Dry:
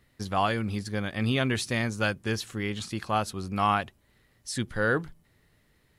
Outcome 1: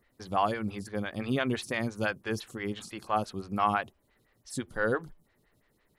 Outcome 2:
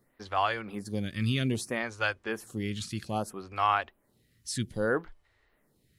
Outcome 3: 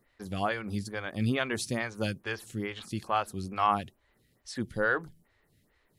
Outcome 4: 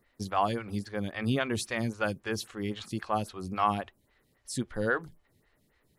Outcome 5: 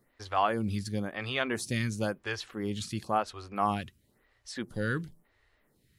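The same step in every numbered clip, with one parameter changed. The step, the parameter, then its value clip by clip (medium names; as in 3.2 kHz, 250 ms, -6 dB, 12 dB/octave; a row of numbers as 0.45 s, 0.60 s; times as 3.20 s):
lamp-driven phase shifter, rate: 5.9 Hz, 0.62 Hz, 2.3 Hz, 3.7 Hz, 0.97 Hz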